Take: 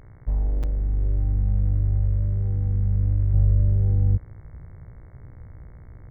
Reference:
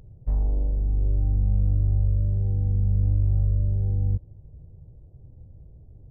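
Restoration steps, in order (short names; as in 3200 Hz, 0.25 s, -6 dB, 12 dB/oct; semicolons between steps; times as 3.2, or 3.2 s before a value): de-hum 59.8 Hz, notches 37; interpolate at 0.63, 6.4 ms; gain 0 dB, from 3.34 s -4 dB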